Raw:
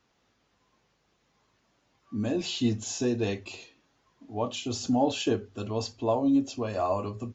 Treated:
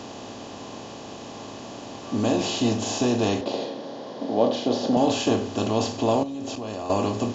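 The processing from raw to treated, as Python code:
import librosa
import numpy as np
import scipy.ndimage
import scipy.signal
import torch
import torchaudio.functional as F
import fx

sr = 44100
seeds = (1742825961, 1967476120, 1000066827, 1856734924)

y = fx.bin_compress(x, sr, power=0.4)
y = fx.cabinet(y, sr, low_hz=140.0, low_slope=24, high_hz=5000.0, hz=(530.0, 1200.0, 2600.0), db=(9, -4, -9), at=(3.41, 4.97))
y = fx.level_steps(y, sr, step_db=16, at=(6.23, 6.9))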